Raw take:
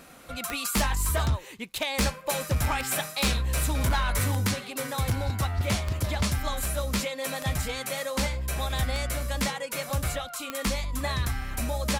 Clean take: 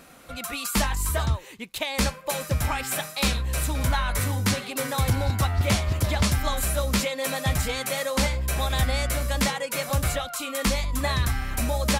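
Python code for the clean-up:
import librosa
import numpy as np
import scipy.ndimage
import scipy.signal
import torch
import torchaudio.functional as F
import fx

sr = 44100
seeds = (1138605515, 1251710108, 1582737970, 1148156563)

y = fx.fix_declip(x, sr, threshold_db=-19.5)
y = fx.fix_declick_ar(y, sr, threshold=10.0)
y = fx.gain(y, sr, db=fx.steps((0.0, 0.0), (4.47, 4.0)))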